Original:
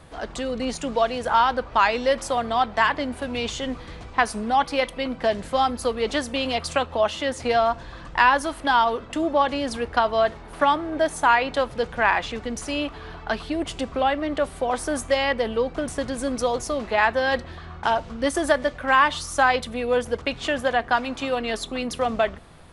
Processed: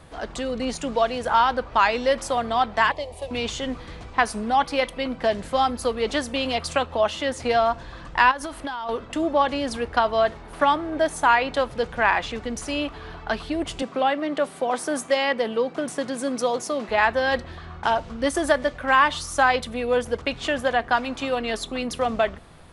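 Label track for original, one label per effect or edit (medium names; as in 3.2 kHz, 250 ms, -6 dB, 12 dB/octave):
2.910000	3.310000	static phaser centre 610 Hz, stages 4
8.310000	8.890000	compression 16:1, threshold -26 dBFS
13.820000	16.890000	high-pass 150 Hz 24 dB/octave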